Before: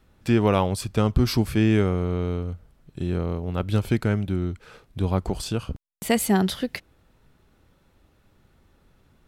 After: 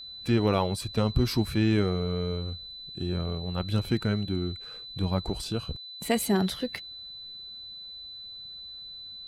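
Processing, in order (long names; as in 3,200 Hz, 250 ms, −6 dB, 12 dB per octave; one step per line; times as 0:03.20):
spectral magnitudes quantised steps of 15 dB
steady tone 4,000 Hz −36 dBFS
level −4 dB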